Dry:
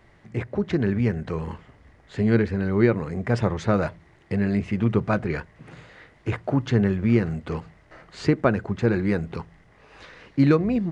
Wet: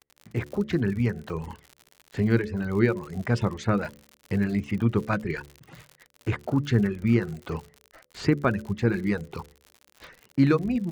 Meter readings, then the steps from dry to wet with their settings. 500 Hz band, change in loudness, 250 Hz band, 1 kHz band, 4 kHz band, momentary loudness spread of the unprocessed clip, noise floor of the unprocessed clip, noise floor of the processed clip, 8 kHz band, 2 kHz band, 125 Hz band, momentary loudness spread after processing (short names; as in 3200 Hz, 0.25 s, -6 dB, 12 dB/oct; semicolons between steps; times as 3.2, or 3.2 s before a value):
-4.0 dB, -2.5 dB, -2.5 dB, -2.5 dB, -0.5 dB, 12 LU, -56 dBFS, -64 dBFS, n/a, -1.0 dB, -2.0 dB, 12 LU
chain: gate -45 dBFS, range -36 dB; reverb removal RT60 0.98 s; crackle 85/s -35 dBFS; dynamic EQ 630 Hz, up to -6 dB, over -37 dBFS, Q 1.5; de-hum 72.14 Hz, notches 8